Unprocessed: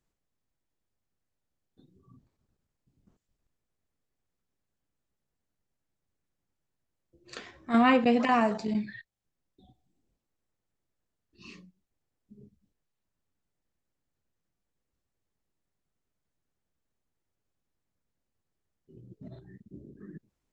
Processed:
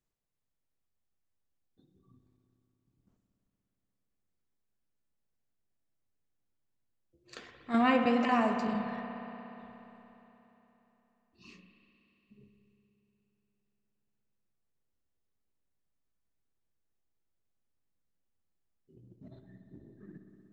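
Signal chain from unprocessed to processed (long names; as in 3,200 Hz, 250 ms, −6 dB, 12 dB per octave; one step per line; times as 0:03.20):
in parallel at −11.5 dB: dead-zone distortion −45 dBFS
on the sum: spring reverb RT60 3.6 s, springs 59 ms, chirp 65 ms, DRR 4.5 dB
level −6.5 dB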